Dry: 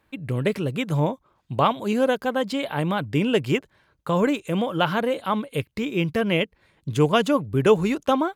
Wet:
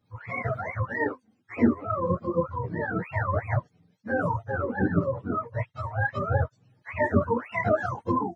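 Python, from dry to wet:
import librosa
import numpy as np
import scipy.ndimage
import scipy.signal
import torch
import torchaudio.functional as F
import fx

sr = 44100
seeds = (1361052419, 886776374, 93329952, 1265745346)

y = fx.octave_mirror(x, sr, pivot_hz=520.0)
y = fx.chorus_voices(y, sr, voices=6, hz=0.87, base_ms=13, depth_ms=4.3, mix_pct=55)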